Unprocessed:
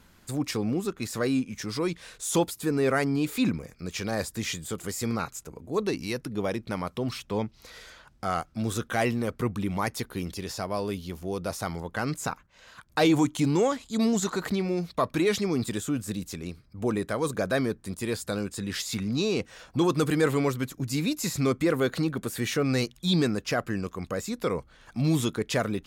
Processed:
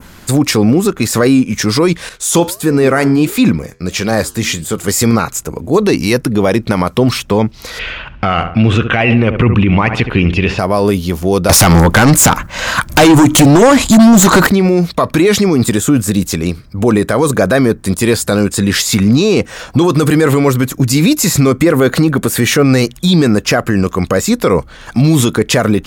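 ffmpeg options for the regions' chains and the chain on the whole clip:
-filter_complex "[0:a]asettb=1/sr,asplit=3[a][b][c];[a]atrim=end=2.094[d];[b]atrim=start=2.09:end=4.88,asetpts=PTS-STARTPTS,afade=t=in:d=0.004:c=qsin,afade=t=out:st=2.786:d=0.004:c=qsin,agate=range=-33dB:threshold=-48dB:ratio=3:release=100:detection=peak,flanger=delay=4.9:depth=6.4:regen=-84:speed=1.5:shape=sinusoidal[e];[c]atrim=start=4.876[f];[d][e]acrossfade=d=0.004:c1=hsin:c2=qsin[g];[g][f]acrossfade=d=0.004:c1=qsin:c2=hsin,asettb=1/sr,asplit=3[h][i][j];[h]atrim=end=7.794[k];[i]atrim=start=7.79:end=10.59,asetpts=PTS-STARTPTS,afade=t=in:d=0.004:c=qsin,afade=t=out:st=2.796:d=0.004:c=qsin,lowpass=f=2.7k:t=q:w=5.9,lowshelf=f=180:g=7.5,asplit=2[l][m];[m]adelay=69,lowpass=f=1.8k:p=1,volume=-13dB,asplit=2[n][o];[o]adelay=69,lowpass=f=1.8k:p=1,volume=0.42,asplit=2[p][q];[q]adelay=69,lowpass=f=1.8k:p=1,volume=0.42,asplit=2[r][s];[s]adelay=69,lowpass=f=1.8k:p=1,volume=0.42[t];[l][n][p][r][t]amix=inputs=5:normalize=0,atrim=end_sample=123480[u];[j]atrim=start=10.586[v];[k][u]acrossfade=d=0.004:c1=hsin:c2=qsin[w];[w][v]acrossfade=d=0.004:c1=qsin:c2=hsin,asettb=1/sr,asplit=3[x][y][z];[x]atrim=end=11.494[aa];[y]atrim=start=11.49:end=14.47,asetpts=PTS-STARTPTS,afade=t=in:d=0.004:c=qsin,afade=t=out:st=2.976:d=0.004:c=qsin,bandreject=f=430:w=5.1,acompressor=threshold=-31dB:ratio=10:attack=3.2:release=140:knee=1:detection=peak,aeval=exprs='0.1*sin(PI/2*3.98*val(0)/0.1)':c=same[ab];[z]atrim=start=14.466[ac];[aa][ab]acrossfade=d=0.004:c1=hsin:c2=qsin[ad];[ad][ac]acrossfade=d=0.004:c1=qsin:c2=hsin,adynamicequalizer=threshold=0.00398:dfrequency=4000:dqfactor=1:tfrequency=4000:tqfactor=1:attack=5:release=100:ratio=0.375:range=2.5:mode=cutabove:tftype=bell,alimiter=level_in=21.5dB:limit=-1dB:release=50:level=0:latency=1,volume=-1dB"

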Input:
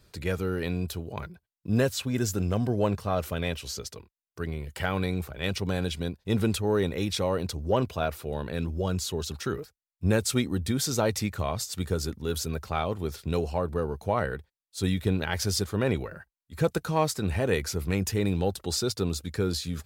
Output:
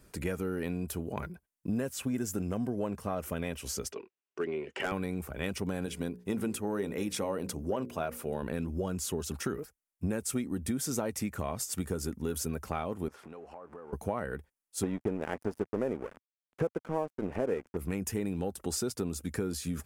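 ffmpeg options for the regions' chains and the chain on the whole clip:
-filter_complex "[0:a]asettb=1/sr,asplit=3[a][b][c];[a]atrim=end=3.924[d];[b]atrim=start=3.92:end=4.92,asetpts=PTS-STARTPTS,afade=t=in:d=0.004:c=qsin,afade=t=out:st=0.996:d=0.004:c=qsin,highpass=310,equalizer=f=390:t=q:w=4:g=10,equalizer=f=2.7k:t=q:w=4:g=7,equalizer=f=4.8k:t=q:w=4:g=-4,lowpass=f=5.4k:w=0.5412,lowpass=f=5.4k:w=1.3066,bandreject=f=480:w=15,volume=25dB,asoftclip=hard,volume=-25dB[e];[c]atrim=start=4.916[f];[d][e]acrossfade=d=0.004:c1=hsin:c2=qsin[g];[g][f]acrossfade=d=0.004:c1=qsin:c2=hsin,asettb=1/sr,asplit=3[h][i][j];[h]atrim=end=5.864[k];[i]atrim=start=5.86:end=8.43,asetpts=PTS-STARTPTS,afade=t=in:d=0.004:c=qsin,afade=t=out:st=2.566:d=0.004:c=qsin,highpass=f=140:p=1,bandreject=f=60:t=h:w=6,bandreject=f=120:t=h:w=6,bandreject=f=180:t=h:w=6,bandreject=f=240:t=h:w=6,bandreject=f=300:t=h:w=6,bandreject=f=360:t=h:w=6,bandreject=f=420:t=h:w=6,bandreject=f=480:t=h:w=6,bandreject=f=540:t=h:w=6[l];[j]atrim=start=8.426[m];[k][l]acrossfade=d=0.004:c1=hsin:c2=qsin[n];[n][m]acrossfade=d=0.004:c1=qsin:c2=hsin,asettb=1/sr,asplit=3[o][p][q];[o]atrim=end=13.084[r];[p]atrim=start=13.08:end=13.93,asetpts=PTS-STARTPTS,afade=t=in:d=0.004:c=qsin,afade=t=out:st=0.846:d=0.004:c=qsin,aeval=exprs='val(0)+0.5*0.00794*sgn(val(0))':c=same,bandpass=f=1k:t=q:w=0.92,acompressor=threshold=-46dB:ratio=6:attack=3.2:release=140:knee=1:detection=peak[s];[q]atrim=start=13.926[t];[r][s]acrossfade=d=0.004:c1=hsin:c2=qsin[u];[u][t]acrossfade=d=0.004:c1=qsin:c2=hsin,asettb=1/sr,asplit=3[v][w][x];[v]atrim=end=14.834[y];[w]atrim=start=14.83:end=17.77,asetpts=PTS-STARTPTS,afade=t=in:d=0.004:c=qsin,afade=t=out:st=2.936:d=0.004:c=qsin,lowpass=2.8k,equalizer=f=500:w=0.69:g=11.5,aeval=exprs='sgn(val(0))*max(abs(val(0))-0.0282,0)':c=same[z];[x]atrim=start=17.766[aa];[y][z]acrossfade=d=0.004:c1=hsin:c2=qsin[ab];[ab][aa]acrossfade=d=0.004:c1=qsin:c2=hsin,equalizer=f=100:t=o:w=0.67:g=-7,equalizer=f=250:t=o:w=0.67:g=5,equalizer=f=4k:t=o:w=0.67:g=-11,equalizer=f=10k:t=o:w=0.67:g=5,acompressor=threshold=-31dB:ratio=6,volume=1.5dB"

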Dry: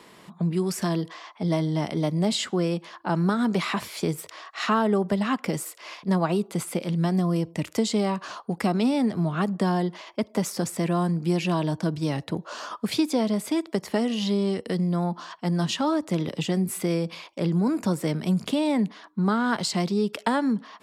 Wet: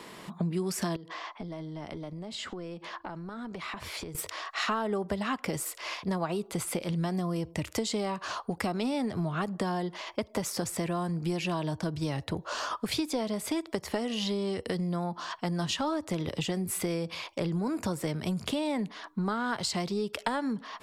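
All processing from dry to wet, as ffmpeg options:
-filter_complex "[0:a]asettb=1/sr,asplit=3[a][b][c];[a]atrim=end=0.964[d];[b]atrim=start=0.96:end=4.15,asetpts=PTS-STARTPTS,afade=t=in:d=0.004:c=qsin,afade=t=out:st=3.186:d=0.004:c=qsin,lowpass=f=3.4k:p=1,acompressor=threshold=-37dB:ratio=16:attack=3.2:release=140:knee=1:detection=peak[e];[c]atrim=start=4.146[f];[d][e]acrossfade=d=0.004:c1=hsin:c2=qsin[g];[g][f]acrossfade=d=0.004:c1=qsin:c2=hsin,asubboost=boost=11:cutoff=58,acompressor=threshold=-34dB:ratio=3,volume=4dB"

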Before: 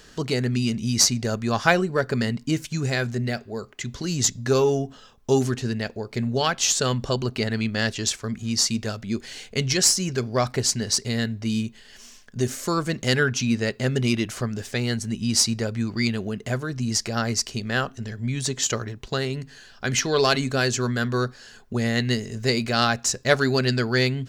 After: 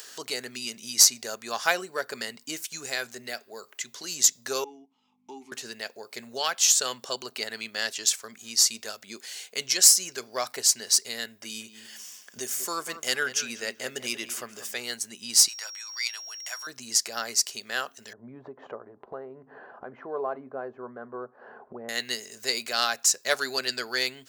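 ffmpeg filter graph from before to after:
-filter_complex "[0:a]asettb=1/sr,asplit=3[a][b][c];[a]atrim=end=4.644[d];[b]atrim=start=4.64:end=5.52,asetpts=PTS-STARTPTS,afade=t=in:d=0.004:c=qsin,afade=t=out:st=0.876:d=0.004:c=qsin,aeval=exprs='val(0)+0.02*(sin(2*PI*50*n/s)+sin(2*PI*2*50*n/s)/2+sin(2*PI*3*50*n/s)/3+sin(2*PI*4*50*n/s)/4+sin(2*PI*5*50*n/s)/5)':c=same,agate=range=-7dB:threshold=-28dB:ratio=16:release=100:detection=peak,asplit=3[e][f][g];[e]bandpass=f=300:t=q:w=8,volume=0dB[h];[f]bandpass=f=870:t=q:w=8,volume=-6dB[i];[g]bandpass=f=2.24k:t=q:w=8,volume=-9dB[j];[h][i][j]amix=inputs=3:normalize=0[k];[c]atrim=start=5.516[l];[d][k]acrossfade=d=0.004:c1=hsin:c2=qsin[m];[m][l]acrossfade=d=0.004:c1=qsin:c2=hsin,asettb=1/sr,asplit=3[n][o][p];[n]atrim=end=11.244[q];[o]atrim=start=11.24:end=14.84,asetpts=PTS-STARTPTS,afade=t=in:d=0.004:c=qsin,afade=t=out:st=3.596:d=0.004:c=qsin,bandreject=f=4.1k:w=10,asplit=2[r][s];[s]adelay=190,lowpass=f=2k:p=1,volume=-11.5dB,asplit=2[t][u];[u]adelay=190,lowpass=f=2k:p=1,volume=0.27,asplit=2[v][w];[w]adelay=190,lowpass=f=2k:p=1,volume=0.27[x];[r][t][v][x]amix=inputs=4:normalize=0,atrim=end_sample=158760[y];[p]atrim=start=14.836[z];[q][y]acrossfade=d=0.004:c1=hsin:c2=qsin[aa];[aa][z]acrossfade=d=0.004:c1=qsin:c2=hsin,asettb=1/sr,asplit=3[ab][ac][ad];[ab]atrim=end=15.484[ae];[ac]atrim=start=15.48:end=16.67,asetpts=PTS-STARTPTS,afade=t=in:d=0.004:c=qsin,afade=t=out:st=1.186:d=0.004:c=qsin,highpass=f=870:w=0.5412,highpass=f=870:w=1.3066,aeval=exprs='val(0)+0.0112*sin(2*PI*5600*n/s)':c=same[af];[ad]atrim=start=16.666[ag];[ae][af]acrossfade=d=0.004:c1=hsin:c2=qsin[ah];[ah][ag]acrossfade=d=0.004:c1=qsin:c2=hsin,asettb=1/sr,asplit=3[ai][aj][ak];[ai]atrim=end=18.134[al];[aj]atrim=start=18.13:end=21.89,asetpts=PTS-STARTPTS,afade=t=in:d=0.004:c=qsin,afade=t=out:st=3.756:d=0.004:c=qsin,lowpass=f=1k:w=0.5412,lowpass=f=1k:w=1.3066,acompressor=mode=upward:threshold=-28dB:ratio=2.5:attack=3.2:release=140:knee=2.83:detection=peak[am];[ak]atrim=start=21.886[an];[al][am]acrossfade=d=0.004:c1=hsin:c2=qsin[ao];[ao][an]acrossfade=d=0.004:c1=qsin:c2=hsin,highpass=550,aemphasis=mode=production:type=50fm,acompressor=mode=upward:threshold=-33dB:ratio=2.5,volume=-5dB"

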